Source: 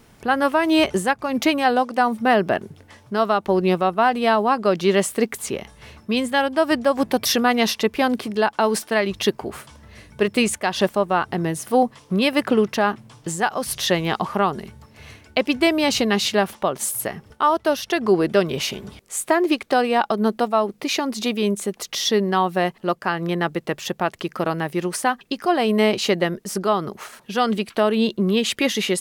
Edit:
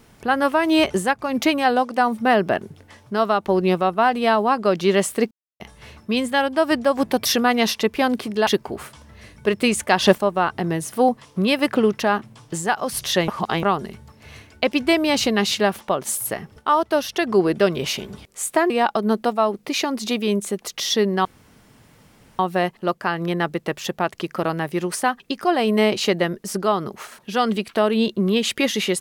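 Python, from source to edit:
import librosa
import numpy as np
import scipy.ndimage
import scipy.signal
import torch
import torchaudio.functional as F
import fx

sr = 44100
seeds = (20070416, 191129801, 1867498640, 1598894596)

y = fx.edit(x, sr, fx.silence(start_s=5.31, length_s=0.29),
    fx.cut(start_s=8.47, length_s=0.74),
    fx.clip_gain(start_s=10.55, length_s=0.37, db=5.0),
    fx.reverse_span(start_s=14.02, length_s=0.35),
    fx.cut(start_s=19.44, length_s=0.41),
    fx.insert_room_tone(at_s=22.4, length_s=1.14), tone=tone)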